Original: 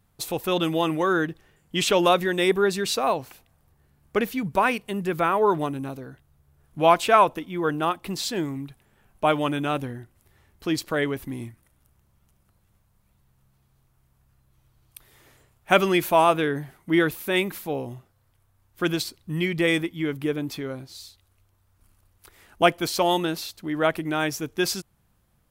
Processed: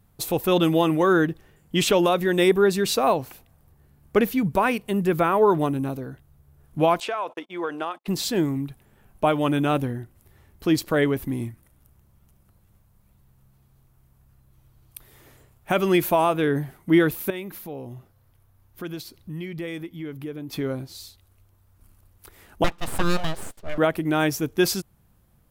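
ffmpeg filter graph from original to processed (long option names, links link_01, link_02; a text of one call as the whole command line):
ffmpeg -i in.wav -filter_complex "[0:a]asettb=1/sr,asplit=3[link_01][link_02][link_03];[link_01]atrim=end=7.004[link_04];[link_02]atrim=start=7:end=8.08,asetpts=PTS-STARTPTS,afade=type=in:duration=0.004:curve=qsin,afade=type=out:start_time=1.076:duration=0.004:curve=qsin,agate=range=-38dB:threshold=-39dB:ratio=16:release=100:detection=peak,highpass=510,lowpass=6700,acompressor=threshold=-25dB:ratio=16:attack=3.2:release=140:knee=1:detection=peak[link_05];[link_03]atrim=start=8.076[link_06];[link_04][link_05]acrossfade=duration=0.004:curve1=hsin:curve2=qsin[link_07];[link_07][link_06]acrossfade=duration=0.004:curve1=qsin:curve2=hsin,asettb=1/sr,asplit=3[link_08][link_09][link_10];[link_08]atrim=end=17.304[link_11];[link_09]atrim=start=17.3:end=20.53,asetpts=PTS-STARTPTS,afade=type=in:duration=0.004:curve=qsin,afade=type=out:start_time=3.226:duration=0.004:curve=qsin,equalizer=frequency=8000:width=4.4:gain=-5,acompressor=threshold=-45dB:ratio=2:attack=3.2:release=140:knee=1:detection=peak[link_12];[link_10]atrim=start=20.526[link_13];[link_11][link_12]acrossfade=duration=0.004:curve1=hsin:curve2=qsin[link_14];[link_14][link_13]acrossfade=duration=0.004:curve1=qsin:curve2=hsin,asettb=1/sr,asplit=3[link_15][link_16][link_17];[link_15]atrim=end=22.644[link_18];[link_16]atrim=start=22.64:end=23.78,asetpts=PTS-STARTPTS,afade=type=in:duration=0.004:curve=qsin,afade=type=out:start_time=1.136:duration=0.004:curve=qsin,highpass=280,lowpass=5400,aeval=exprs='abs(val(0))':channel_layout=same[link_19];[link_17]atrim=start=23.776[link_20];[link_18][link_19]acrossfade=duration=0.004:curve1=hsin:curve2=qsin[link_21];[link_21][link_20]acrossfade=duration=0.004:curve1=qsin:curve2=hsin,equalizer=frequency=14000:width_type=o:width=0.72:gain=6,alimiter=limit=-12dB:level=0:latency=1:release=261,tiltshelf=frequency=730:gain=3,volume=3dB" out.wav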